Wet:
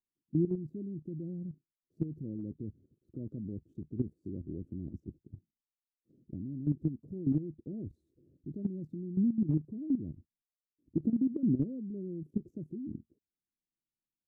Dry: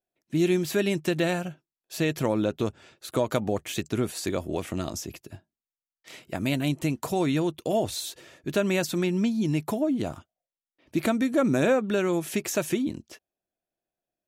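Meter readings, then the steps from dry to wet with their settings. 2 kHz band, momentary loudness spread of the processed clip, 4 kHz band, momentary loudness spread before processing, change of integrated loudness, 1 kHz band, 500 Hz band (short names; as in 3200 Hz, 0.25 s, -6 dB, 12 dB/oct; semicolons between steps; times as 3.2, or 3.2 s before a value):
under -40 dB, 16 LU, under -40 dB, 11 LU, -9.0 dB, under -35 dB, -18.0 dB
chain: inverse Chebyshev low-pass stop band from 800 Hz, stop band 50 dB; level quantiser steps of 13 dB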